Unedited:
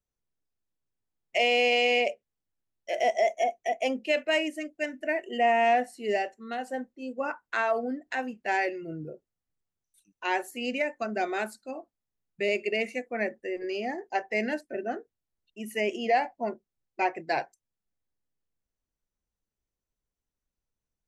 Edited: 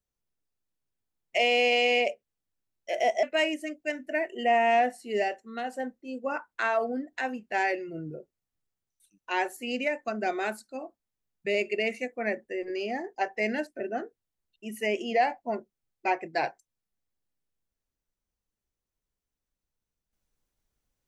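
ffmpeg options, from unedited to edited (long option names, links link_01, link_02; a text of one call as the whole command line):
ffmpeg -i in.wav -filter_complex "[0:a]asplit=2[link_01][link_02];[link_01]atrim=end=3.232[link_03];[link_02]atrim=start=4.168[link_04];[link_03][link_04]acrossfade=duration=0.004:curve1=hsin:curve2=hsin" out.wav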